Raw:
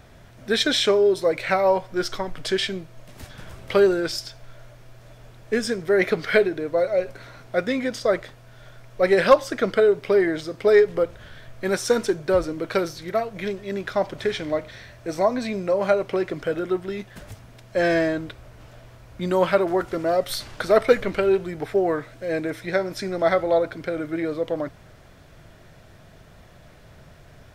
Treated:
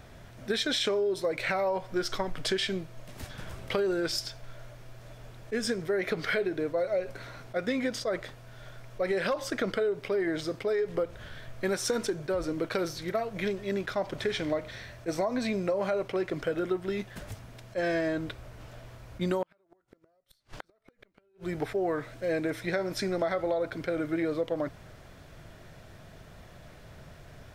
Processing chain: peak limiter -14 dBFS, peak gain reduction 10 dB; compression 8:1, threshold -24 dBFS, peak gain reduction 8 dB; 19.42–21.54 s: inverted gate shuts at -21 dBFS, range -42 dB; attacks held to a fixed rise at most 460 dB/s; trim -1 dB

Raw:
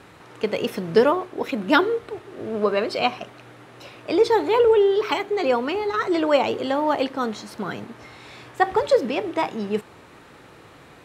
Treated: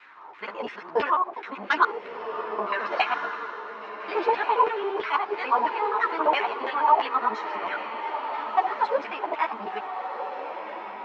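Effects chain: time reversed locally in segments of 68 ms; LFO band-pass saw down 3 Hz 660–2300 Hz; saturation -12.5 dBFS, distortion -22 dB; cabinet simulation 140–6300 Hz, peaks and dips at 170 Hz -6 dB, 510 Hz -5 dB, 1 kHz +7 dB; echo that smears into a reverb 1414 ms, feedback 42%, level -8 dB; loudness maximiser +13 dB; three-phase chorus; trim -5.5 dB

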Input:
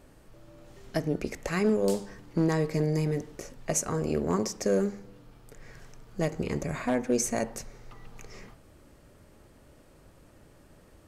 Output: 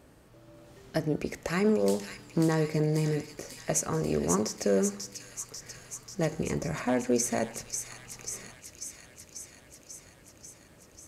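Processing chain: high-pass 58 Hz; feedback echo behind a high-pass 541 ms, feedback 72%, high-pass 2.9 kHz, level -3.5 dB

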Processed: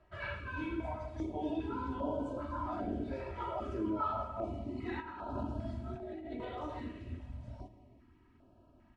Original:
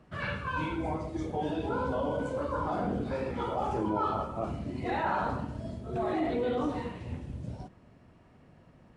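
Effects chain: low-pass 2.8 kHz 6 dB/octave; band-stop 1.1 kHz, Q 26; comb 3.1 ms, depth 79%; 5.00–6.45 s: compressor with a negative ratio -34 dBFS, ratio -1; reverberation RT60 1.9 s, pre-delay 73 ms, DRR 13.5 dB; step-sequenced notch 2.5 Hz 260–2000 Hz; trim -6 dB

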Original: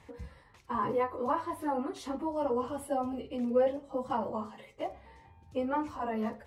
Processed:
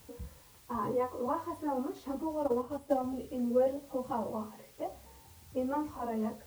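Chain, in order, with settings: level-controlled noise filter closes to 1.2 kHz, open at -29 dBFS; peaking EQ 2.7 kHz -9.5 dB 2.4 oct; word length cut 10-bit, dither triangular; 2.43–3.04 s: transient shaper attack +6 dB, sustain -6 dB

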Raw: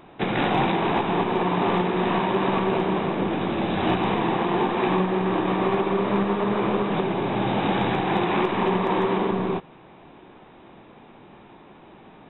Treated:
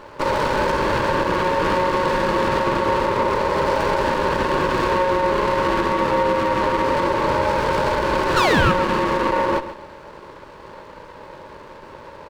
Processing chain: high-pass 65 Hz 24 dB/octave; tone controls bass +9 dB, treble +14 dB; peak limiter -16.5 dBFS, peak gain reduction 8.5 dB; painted sound fall, 8.36–8.72 s, 510–2200 Hz -21 dBFS; ring modulator 730 Hz; on a send: feedback delay 136 ms, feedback 33%, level -13 dB; on the sum: sliding maximum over 9 samples; trim +8 dB

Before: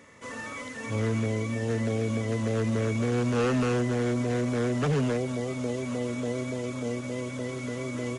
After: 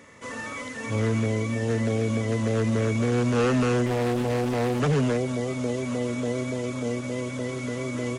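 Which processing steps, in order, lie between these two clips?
3.86–4.80 s: loudspeaker Doppler distortion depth 0.66 ms; trim +3 dB

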